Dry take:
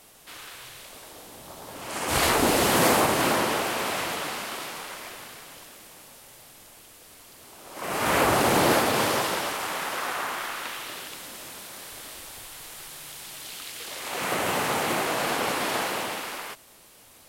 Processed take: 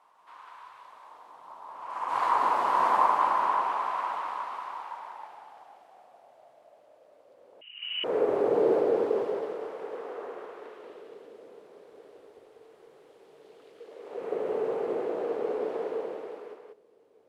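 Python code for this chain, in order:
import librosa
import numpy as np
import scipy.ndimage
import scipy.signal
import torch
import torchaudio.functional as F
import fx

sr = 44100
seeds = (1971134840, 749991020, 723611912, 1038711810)

p1 = fx.filter_sweep_bandpass(x, sr, from_hz=1000.0, to_hz=440.0, start_s=4.59, end_s=8.23, q=7.3)
p2 = p1 + fx.echo_single(p1, sr, ms=185, db=-3.5, dry=0)
p3 = fx.freq_invert(p2, sr, carrier_hz=3400, at=(7.61, 8.04))
y = p3 * librosa.db_to_amplitude(7.0)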